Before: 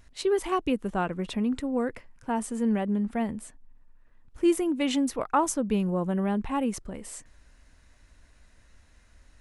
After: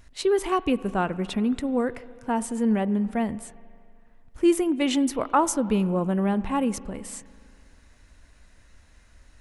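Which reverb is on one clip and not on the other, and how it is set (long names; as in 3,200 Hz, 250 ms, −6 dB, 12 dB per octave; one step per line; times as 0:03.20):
spring reverb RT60 2.3 s, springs 36/41 ms, chirp 65 ms, DRR 17 dB
level +3 dB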